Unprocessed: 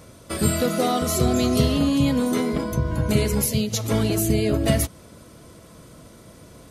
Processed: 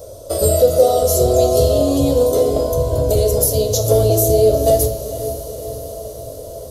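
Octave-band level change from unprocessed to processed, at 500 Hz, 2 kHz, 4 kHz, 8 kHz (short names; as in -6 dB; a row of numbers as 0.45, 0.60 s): +12.5 dB, under -10 dB, +1.5 dB, +6.5 dB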